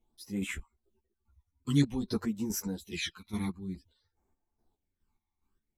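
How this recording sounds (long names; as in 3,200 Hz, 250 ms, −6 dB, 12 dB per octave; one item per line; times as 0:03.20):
phaser sweep stages 12, 0.52 Hz, lowest notch 490–4,300 Hz
chopped level 2.4 Hz, depth 65%, duty 40%
a shimmering, thickened sound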